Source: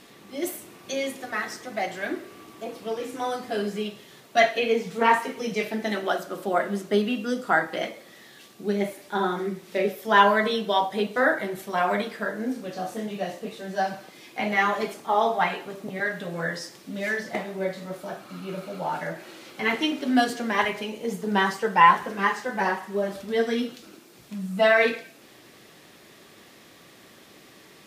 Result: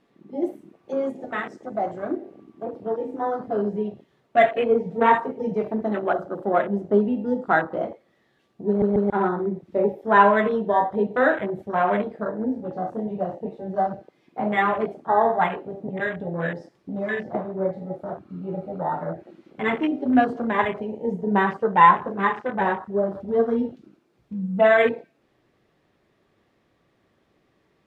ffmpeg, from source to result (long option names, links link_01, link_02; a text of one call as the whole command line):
ffmpeg -i in.wav -filter_complex "[0:a]asettb=1/sr,asplit=3[link_01][link_02][link_03];[link_01]atrim=end=1.034[link_04];[link_02]atrim=start=1.03:end=2.16,asetpts=PTS-STARTPTS,afade=type=in:duration=0.004:curve=qsin,afade=type=out:start_time=1.126:duration=0.004:curve=qsin,equalizer=frequency=7400:width=1.7:gain=8.5[link_05];[link_03]atrim=start=2.156[link_06];[link_04][link_05]acrossfade=duration=0.004:curve1=hsin:curve2=qsin[link_07];[link_07][link_06]acrossfade=duration=0.004:curve1=qsin:curve2=hsin,asplit=4[link_08][link_09][link_10][link_11];[link_08]atrim=end=8.822[link_12];[link_09]atrim=start=8.678:end=8.822[link_13];[link_10]atrim=start=8.678:end=8.822[link_14];[link_11]atrim=start=9.098[link_15];[link_12][link_13]acrossfade=duration=0.004:curve1=hsin:curve2=hsin[link_16];[link_16][link_14]acrossfade=duration=0.004:curve1=hsin:curve2=hsin[link_17];[link_17][link_15]acrossfade=duration=0.004:curve1=hsin:curve2=hsin,lowpass=frequency=1000:poles=1,afwtdn=0.0178,asubboost=boost=2.5:cutoff=110,volume=5.5dB" out.wav